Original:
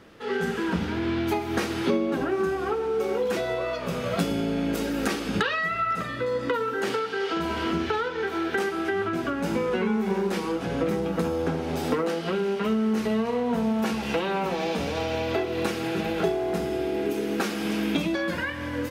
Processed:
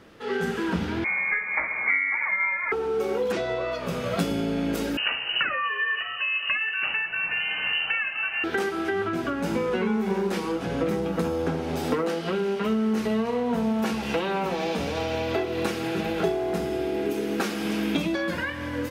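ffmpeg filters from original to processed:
-filter_complex "[0:a]asettb=1/sr,asplit=3[a][b][c];[a]atrim=end=1.044[d];[b]atrim=start=1.04:end=2.72,asetpts=PTS-STARTPTS,afade=t=in:d=0.004:c=qsin,afade=t=out:st=1.676:d=0.004:c=qsin,lowpass=f=2.1k:t=q:w=0.5098,lowpass=f=2.1k:t=q:w=0.6013,lowpass=f=2.1k:t=q:w=0.9,lowpass=f=2.1k:t=q:w=2.563,afreqshift=-2500[e];[c]atrim=start=2.716[f];[d][e]acrossfade=d=0.004:c1=hsin:c2=qsin[g];[g][f]acrossfade=d=0.004:c1=qsin:c2=hsin,asettb=1/sr,asplit=3[h][i][j];[h]atrim=end=3.324[k];[i]atrim=start=3.32:end=3.72,asetpts=PTS-STARTPTS,afade=t=in:d=0.004:c=qsin,afade=t=out:st=0.396:d=0.004:c=qsin,lowpass=6.5k[l];[j]atrim=start=3.716[m];[k][l]acrossfade=d=0.004:c1=hsin:c2=qsin[n];[n][m]acrossfade=d=0.004:c1=qsin:c2=hsin,asettb=1/sr,asplit=3[o][p][q];[o]atrim=end=4.974[r];[p]atrim=start=4.97:end=8.44,asetpts=PTS-STARTPTS,afade=t=in:d=0.004:c=qsin,afade=t=out:st=3.466:d=0.004:c=qsin,lowpass=f=2.6k:t=q:w=0.5098,lowpass=f=2.6k:t=q:w=0.6013,lowpass=f=2.6k:t=q:w=0.9,lowpass=f=2.6k:t=q:w=2.563,afreqshift=-3100[s];[q]atrim=start=8.436[t];[r][s]acrossfade=d=0.004:c1=hsin:c2=qsin[u];[u][t]acrossfade=d=0.004:c1=qsin:c2=hsin"

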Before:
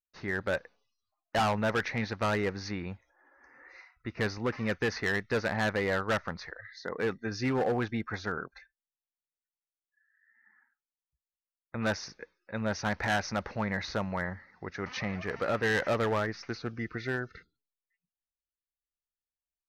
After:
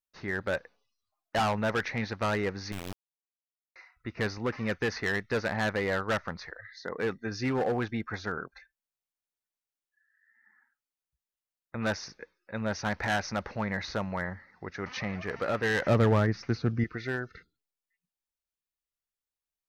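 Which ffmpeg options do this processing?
-filter_complex "[0:a]asettb=1/sr,asplit=3[a][b][c];[a]atrim=end=2.724[d];[b]atrim=start=2.72:end=3.76,asetpts=PTS-STARTPTS,afade=t=in:d=0.004:c=qsin,afade=t=out:st=1.036:d=0.004:c=qsin,acrusher=bits=3:dc=4:mix=0:aa=0.000001[e];[c]atrim=start=3.756[f];[d][e]acrossfade=d=0.004:c1=hsin:c2=qsin[g];[g][f]acrossfade=d=0.004:c1=qsin:c2=hsin,asettb=1/sr,asplit=3[h][i][j];[h]atrim=end=15.864[k];[i]atrim=start=15.86:end=16.84,asetpts=PTS-STARTPTS,afade=t=in:d=0.004:c=qsin,afade=t=out:st=0.976:d=0.004:c=qsin,equalizer=f=120:w=0.43:g=12[l];[j]atrim=start=16.836[m];[k][l]acrossfade=d=0.004:c1=hsin:c2=qsin[n];[n][m]acrossfade=d=0.004:c1=qsin:c2=hsin"

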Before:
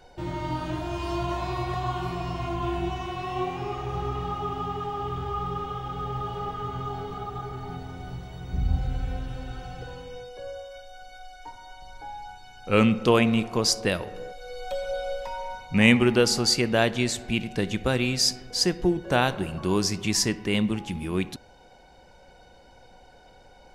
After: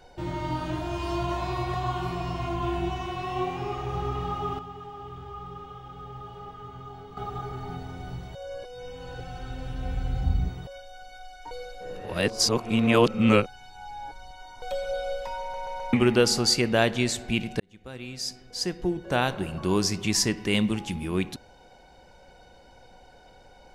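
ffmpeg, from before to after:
-filter_complex "[0:a]asettb=1/sr,asplit=3[a][b][c];[a]atrim=end=20.374[d];[b]atrim=start=20.37:end=20.95,asetpts=PTS-STARTPTS,afade=t=in:d=0.004:c=qsin,afade=t=out:st=0.576:d=0.004:c=qsin,equalizer=f=7.8k:t=o:w=2.4:g=4.5[e];[c]atrim=start=20.946[f];[d][e]acrossfade=d=0.004:c1=hsin:c2=qsin[g];[g][f]acrossfade=d=0.004:c1=qsin:c2=hsin,asplit=12[h][i][j][k][l][m][n][o][p][q][r][s];[h]atrim=end=4.592[t];[i]atrim=start=4.588:end=7.172,asetpts=PTS-STARTPTS,volume=-9.5dB[u];[j]atrim=start=7.168:end=8.352[v];[k]atrim=start=8.348:end=10.672,asetpts=PTS-STARTPTS,areverse[w];[l]atrim=start=10.668:end=11.512[x];[m]atrim=start=11.508:end=14.622,asetpts=PTS-STARTPTS,areverse[y];[n]atrim=start=14.618:end=15.542[z];[o]atrim=start=15.408:end=15.542[aa];[p]atrim=start=15.408:end=15.542[ab];[q]atrim=start=15.408:end=15.542[ac];[r]atrim=start=15.928:end=17.6,asetpts=PTS-STARTPTS,afade=t=out:st=1.668:d=0.004:c=hsin[ad];[s]atrim=start=17.6,asetpts=PTS-STARTPTS,afade=t=in:d=2.1[ae];[t][u]acrossfade=d=0.004:c1=hsin:c2=hsin[af];[af][v]acrossfade=d=0.004:c1=hsin:c2=hsin[ag];[ag][w]acrossfade=d=0.004:c1=hsin:c2=hsin[ah];[ah][x]acrossfade=d=0.004:c1=hsin:c2=hsin[ai];[ai][y]acrossfade=d=0.004:c1=hsin:c2=hsin[aj];[aj][z]acrossfade=d=0.004:c1=hsin:c2=hsin[ak];[ak][aa]acrossfade=d=0.004:c1=hsin:c2=hsin[al];[al][ab]acrossfade=d=0.004:c1=hsin:c2=hsin[am];[am][ac]acrossfade=d=0.004:c1=hsin:c2=hsin[an];[ad][ae]concat=n=2:v=0:a=1[ao];[an][ao]acrossfade=d=0.004:c1=hsin:c2=hsin"

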